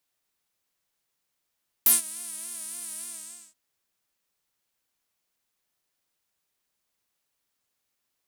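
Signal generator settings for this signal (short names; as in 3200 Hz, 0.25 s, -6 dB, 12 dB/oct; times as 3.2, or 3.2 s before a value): synth patch with vibrato A3, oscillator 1 triangle, oscillator 2 saw, interval +7 st, oscillator 2 level -4 dB, sub -21 dB, noise -14.5 dB, filter bandpass, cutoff 7700 Hz, Q 5, filter envelope 1 oct, filter decay 0.07 s, filter sustain 30%, attack 2.4 ms, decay 0.15 s, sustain -23 dB, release 0.51 s, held 1.17 s, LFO 3.5 Hz, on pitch 94 cents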